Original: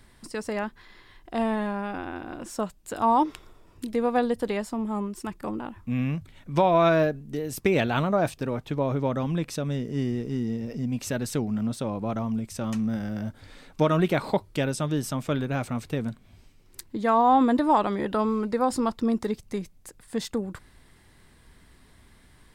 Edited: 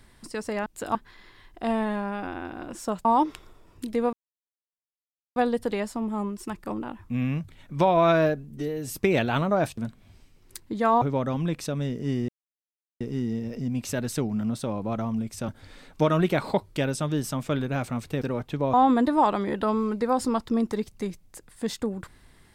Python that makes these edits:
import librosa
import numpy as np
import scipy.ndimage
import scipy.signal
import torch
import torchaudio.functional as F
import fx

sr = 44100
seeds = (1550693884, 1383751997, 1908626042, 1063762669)

y = fx.edit(x, sr, fx.move(start_s=2.76, length_s=0.29, to_s=0.66),
    fx.insert_silence(at_s=4.13, length_s=1.23),
    fx.stretch_span(start_s=7.27, length_s=0.31, factor=1.5),
    fx.swap(start_s=8.39, length_s=0.52, other_s=16.01, other_length_s=1.24),
    fx.insert_silence(at_s=10.18, length_s=0.72),
    fx.cut(start_s=12.66, length_s=0.62), tone=tone)